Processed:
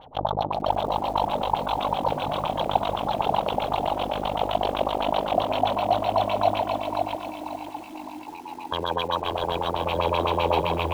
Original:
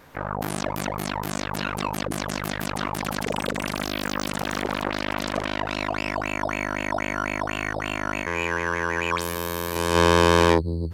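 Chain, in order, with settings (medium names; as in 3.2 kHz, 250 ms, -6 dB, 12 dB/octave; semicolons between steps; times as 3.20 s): rattle on loud lows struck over -25 dBFS, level -10 dBFS; treble shelf 11 kHz +12 dB; peak limiter -14 dBFS, peak gain reduction 10 dB; 6.62–8.72 s: vowel filter u; thinning echo 161 ms, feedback 40%, high-pass 360 Hz, level -4.5 dB; sample-rate reducer 4.9 kHz, jitter 0%; FFT filter 120 Hz 0 dB, 240 Hz -6 dB, 380 Hz -5 dB, 790 Hz +10 dB, 1.8 kHz -18 dB, 3.2 kHz +1 dB, 4.8 kHz -2 dB, 8 kHz -17 dB, 13 kHz +15 dB; LFO low-pass sine 7.8 Hz 260–3600 Hz; bit-crushed delay 537 ms, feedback 35%, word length 8-bit, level -4 dB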